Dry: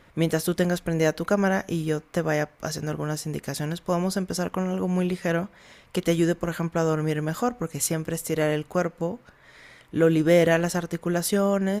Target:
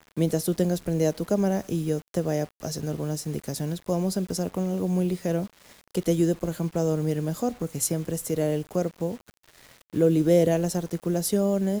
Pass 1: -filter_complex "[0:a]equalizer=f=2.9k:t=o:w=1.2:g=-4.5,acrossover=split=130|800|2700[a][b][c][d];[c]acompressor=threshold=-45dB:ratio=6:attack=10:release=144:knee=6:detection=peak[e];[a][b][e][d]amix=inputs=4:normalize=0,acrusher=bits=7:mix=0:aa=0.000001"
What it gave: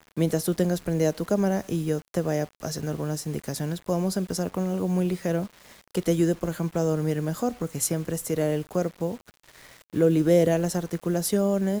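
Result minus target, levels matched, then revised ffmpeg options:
compressor: peak gain reduction -9.5 dB
-filter_complex "[0:a]equalizer=f=2.9k:t=o:w=1.2:g=-4.5,acrossover=split=130|800|2700[a][b][c][d];[c]acompressor=threshold=-56.5dB:ratio=6:attack=10:release=144:knee=6:detection=peak[e];[a][b][e][d]amix=inputs=4:normalize=0,acrusher=bits=7:mix=0:aa=0.000001"

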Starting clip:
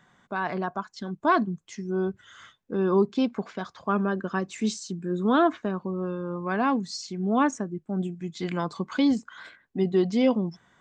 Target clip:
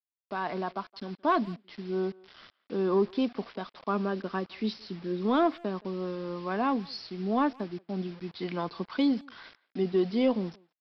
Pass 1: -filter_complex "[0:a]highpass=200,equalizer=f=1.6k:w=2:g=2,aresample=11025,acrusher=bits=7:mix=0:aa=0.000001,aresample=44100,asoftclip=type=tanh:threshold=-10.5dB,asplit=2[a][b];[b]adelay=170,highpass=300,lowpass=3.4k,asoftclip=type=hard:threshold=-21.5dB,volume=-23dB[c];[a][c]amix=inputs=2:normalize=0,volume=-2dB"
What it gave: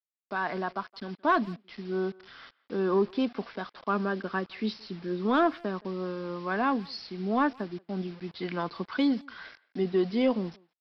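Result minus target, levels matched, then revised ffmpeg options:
2000 Hz band +5.0 dB
-filter_complex "[0:a]highpass=200,equalizer=f=1.6k:w=2:g=-4.5,aresample=11025,acrusher=bits=7:mix=0:aa=0.000001,aresample=44100,asoftclip=type=tanh:threshold=-10.5dB,asplit=2[a][b];[b]adelay=170,highpass=300,lowpass=3.4k,asoftclip=type=hard:threshold=-21.5dB,volume=-23dB[c];[a][c]amix=inputs=2:normalize=0,volume=-2dB"

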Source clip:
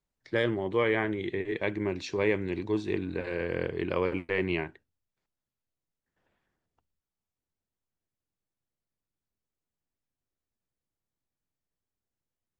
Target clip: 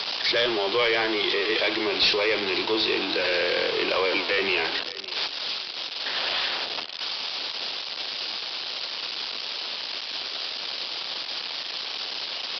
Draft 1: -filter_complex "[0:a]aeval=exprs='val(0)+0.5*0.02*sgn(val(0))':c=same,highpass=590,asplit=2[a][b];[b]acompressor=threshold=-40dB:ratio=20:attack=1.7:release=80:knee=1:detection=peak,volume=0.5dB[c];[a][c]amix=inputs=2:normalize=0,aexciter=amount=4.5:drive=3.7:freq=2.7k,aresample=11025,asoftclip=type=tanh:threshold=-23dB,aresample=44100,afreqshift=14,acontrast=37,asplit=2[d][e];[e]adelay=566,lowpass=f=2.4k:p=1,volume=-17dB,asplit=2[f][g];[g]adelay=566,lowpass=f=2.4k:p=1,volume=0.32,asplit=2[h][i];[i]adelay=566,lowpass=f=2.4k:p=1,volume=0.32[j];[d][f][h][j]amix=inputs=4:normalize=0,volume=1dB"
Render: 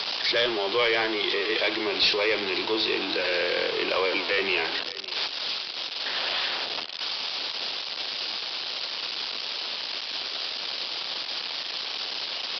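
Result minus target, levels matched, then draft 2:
compressor: peak gain reduction +7 dB
-filter_complex "[0:a]aeval=exprs='val(0)+0.5*0.02*sgn(val(0))':c=same,highpass=590,asplit=2[a][b];[b]acompressor=threshold=-32.5dB:ratio=20:attack=1.7:release=80:knee=1:detection=peak,volume=0.5dB[c];[a][c]amix=inputs=2:normalize=0,aexciter=amount=4.5:drive=3.7:freq=2.7k,aresample=11025,asoftclip=type=tanh:threshold=-23dB,aresample=44100,afreqshift=14,acontrast=37,asplit=2[d][e];[e]adelay=566,lowpass=f=2.4k:p=1,volume=-17dB,asplit=2[f][g];[g]adelay=566,lowpass=f=2.4k:p=1,volume=0.32,asplit=2[h][i];[i]adelay=566,lowpass=f=2.4k:p=1,volume=0.32[j];[d][f][h][j]amix=inputs=4:normalize=0,volume=1dB"

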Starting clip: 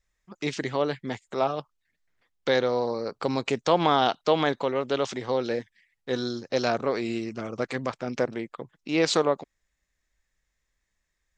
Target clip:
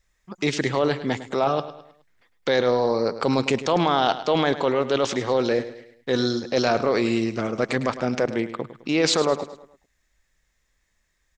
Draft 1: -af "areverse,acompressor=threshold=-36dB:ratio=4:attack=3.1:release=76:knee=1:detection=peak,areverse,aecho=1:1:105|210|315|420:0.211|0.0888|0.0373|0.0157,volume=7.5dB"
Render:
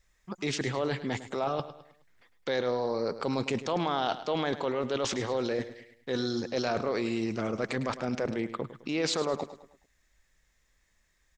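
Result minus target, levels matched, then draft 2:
compressor: peak gain reduction +9 dB
-af "areverse,acompressor=threshold=-24dB:ratio=4:attack=3.1:release=76:knee=1:detection=peak,areverse,aecho=1:1:105|210|315|420:0.211|0.0888|0.0373|0.0157,volume=7.5dB"

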